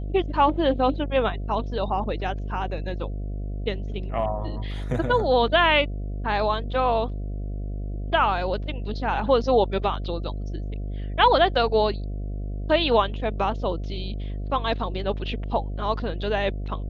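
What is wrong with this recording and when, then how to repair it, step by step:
mains buzz 50 Hz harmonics 14 −30 dBFS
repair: hum removal 50 Hz, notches 14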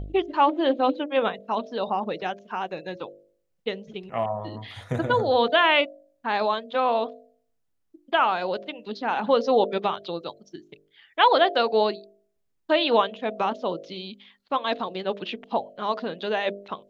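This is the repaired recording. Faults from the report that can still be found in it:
none of them is left

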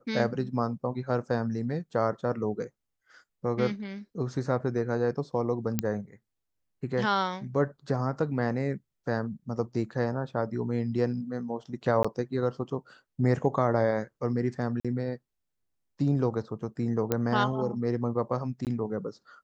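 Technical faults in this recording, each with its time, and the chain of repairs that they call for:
0:05.79: click −11 dBFS
0:12.03–0:12.04: drop-out 15 ms
0:14.80–0:14.85: drop-out 46 ms
0:17.12: click −12 dBFS
0:18.65–0:18.67: drop-out 18 ms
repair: click removal
repair the gap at 0:12.03, 15 ms
repair the gap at 0:14.80, 46 ms
repair the gap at 0:18.65, 18 ms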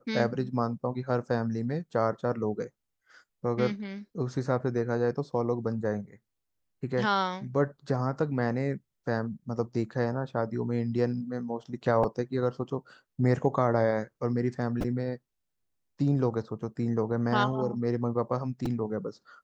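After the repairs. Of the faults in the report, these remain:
none of them is left

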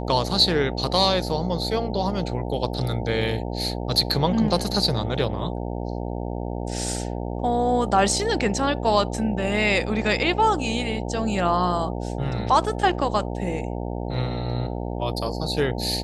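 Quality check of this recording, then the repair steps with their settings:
mains buzz 60 Hz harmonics 15 −29 dBFS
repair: hum removal 60 Hz, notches 15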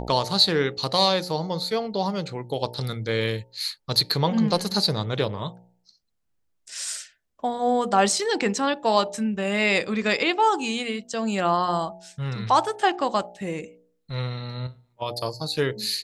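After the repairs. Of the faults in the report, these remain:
none of them is left

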